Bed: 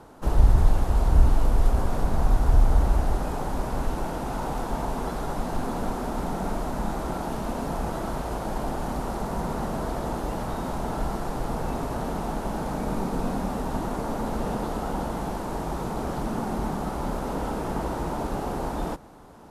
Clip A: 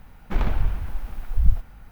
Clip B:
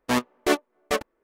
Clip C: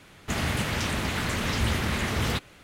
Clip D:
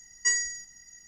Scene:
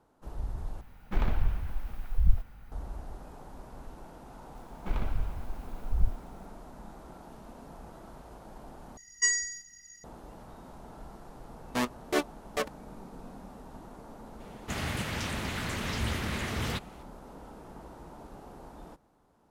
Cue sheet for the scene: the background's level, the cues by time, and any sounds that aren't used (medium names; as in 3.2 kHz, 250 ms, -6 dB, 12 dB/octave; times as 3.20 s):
bed -18.5 dB
0.81 s: replace with A -5 dB
4.55 s: add A -8.5 dB + band-stop 1.8 kHz, Q 13
8.97 s: replace with D -1 dB
11.66 s: add B -6.5 dB
14.40 s: add C -6 dB